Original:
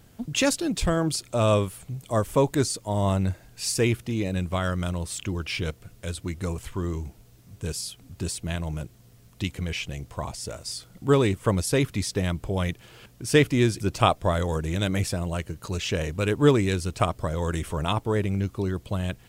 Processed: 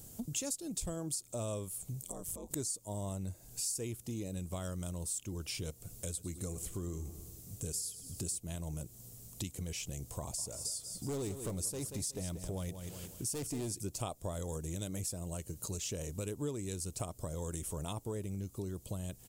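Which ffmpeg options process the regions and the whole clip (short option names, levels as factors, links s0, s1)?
-filter_complex "[0:a]asettb=1/sr,asplit=3[s0][s1][s2];[s0]atrim=end=2.034[s3];[s1]atrim=start=2.03:end=2.51,asetpts=PTS-STARTPTS,afade=t=in:d=0.004:c=qsin,afade=t=out:st=0.476:d=0.004:c=qsin,acompressor=threshold=0.0251:ratio=20:attack=3.2:release=140:knee=1:detection=peak,aeval=exprs='val(0)*sin(2*PI*87*n/s)':c=same[s4];[s2]atrim=start=2.506[s5];[s3][s4]acrossfade=d=0.004:c1=hsin:c2=qsin[s6];[s6][s5]acrossfade=d=0.004:c1=qsin:c2=hsin,asettb=1/sr,asplit=3[s7][s8][s9];[s7]atrim=end=6.074[s10];[s8]atrim=start=6.07:end=8.39,asetpts=PTS-STARTPTS,afade=t=in:d=0.004:c=qsin,afade=t=out:st=2.316:d=0.004:c=qsin,asuperstop=centerf=940:order=4:qfactor=7.3,aecho=1:1:102|204|306|408|510:0.158|0.084|0.0445|0.0236|0.0125,atrim=end_sample=102312[s11];[s9]atrim=start=8.386[s12];[s10][s11]acrossfade=d=0.004:c1=hsin:c2=qsin[s13];[s13][s12]acrossfade=d=0.004:c1=qsin:c2=hsin,asettb=1/sr,asplit=3[s14][s15][s16];[s14]atrim=end=10.204[s17];[s15]atrim=start=10.2:end=13.72,asetpts=PTS-STARTPTS,afade=t=in:d=0.004:c=qsin,afade=t=out:st=3.516:d=0.004:c=qsin,asoftclip=type=hard:threshold=0.0944,aecho=1:1:184|368|552|736:0.266|0.0905|0.0308|0.0105,atrim=end_sample=155232[s18];[s16]atrim=start=13.716[s19];[s17][s18]acrossfade=d=0.004:c1=hsin:c2=qsin[s20];[s20][s19]acrossfade=d=0.004:c1=qsin:c2=hsin,firequalizer=gain_entry='entry(510,0);entry(1600,-10);entry(7200,13)':delay=0.05:min_phase=1,acompressor=threshold=0.0141:ratio=4,volume=0.841"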